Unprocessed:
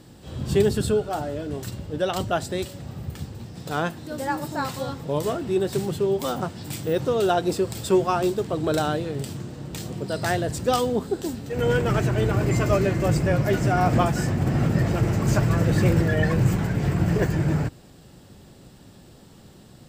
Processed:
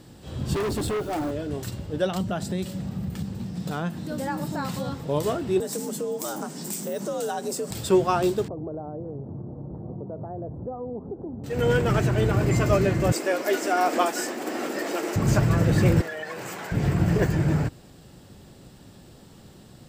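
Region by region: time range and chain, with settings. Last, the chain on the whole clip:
0.54–1.31 bell 310 Hz +13 dB 0.37 oct + requantised 8-bit, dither none + overloaded stage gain 24.5 dB
2.06–4.94 bell 190 Hz +14 dB 0.47 oct + compressor 2.5:1, threshold -26 dBFS
5.6–7.71 resonant high shelf 4900 Hz +9 dB, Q 1.5 + compressor 2.5:1, threshold -29 dBFS + frequency shift +63 Hz
8.48–11.44 compressor 4:1, threshold -31 dBFS + inverse Chebyshev low-pass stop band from 2300 Hz, stop band 50 dB
13.12–15.16 steep high-pass 280 Hz + high shelf 4100 Hz +6 dB
16.01–16.72 HPF 560 Hz + compressor 5:1, threshold -30 dBFS
whole clip: dry

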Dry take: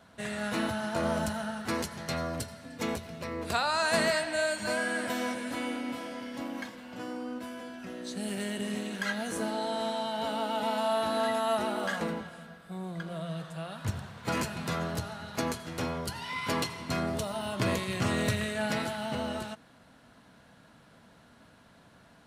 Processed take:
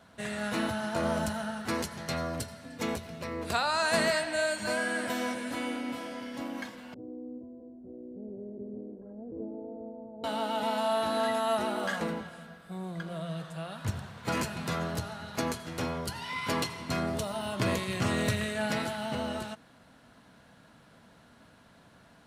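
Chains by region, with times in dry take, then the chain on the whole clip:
6.94–10.24 inverse Chebyshev low-pass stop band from 2700 Hz, stop band 80 dB + bell 180 Hz -13.5 dB 0.56 oct
whole clip: dry

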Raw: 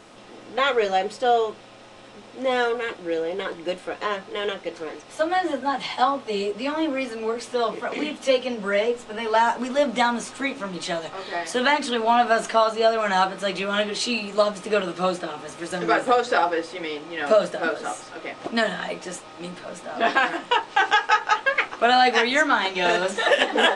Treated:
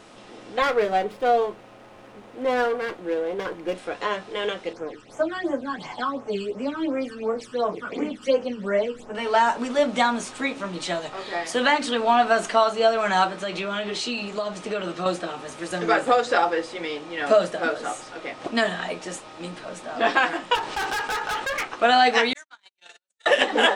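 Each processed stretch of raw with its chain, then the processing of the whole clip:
0.62–3.75 bell 5300 Hz -12.5 dB 1.1 oct + running maximum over 5 samples
4.73–9.15 high shelf 3700 Hz -6.5 dB + phaser stages 12, 2.8 Hz, lowest notch 650–4200 Hz
13.36–15.06 compressor 4:1, threshold -24 dBFS + LPF 7900 Hz
20.55–21.63 overloaded stage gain 24.5 dB + fast leveller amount 50%
22.33–23.26 pre-emphasis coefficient 0.97 + gate -32 dBFS, range -56 dB + compressor 5:1, threshold -41 dBFS
whole clip: dry

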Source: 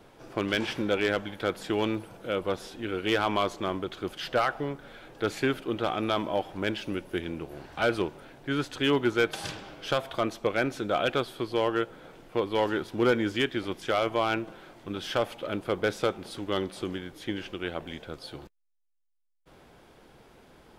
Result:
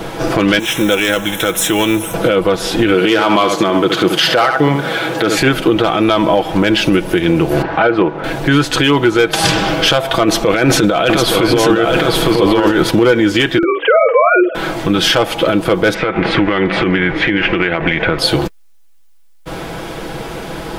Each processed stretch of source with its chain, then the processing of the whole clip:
0.59–2.14 G.711 law mismatch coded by mu + Butterworth band-stop 4600 Hz, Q 3.1 + pre-emphasis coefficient 0.8
2.94–5.38 HPF 140 Hz + echo 72 ms -9.5 dB
7.62–8.24 LPF 1900 Hz + low shelf 120 Hz -11.5 dB
10.23–12.91 negative-ratio compressor -33 dBFS + echo 0.866 s -4.5 dB
13.58–14.55 sine-wave speech + doubler 50 ms -6.5 dB + de-hum 296.7 Hz, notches 3
15.94–18.19 synth low-pass 2100 Hz, resonance Q 3 + compressor 4:1, threshold -36 dBFS
whole clip: comb 6.1 ms, depth 48%; compressor 3:1, threshold -37 dBFS; maximiser +30 dB; gain -1 dB

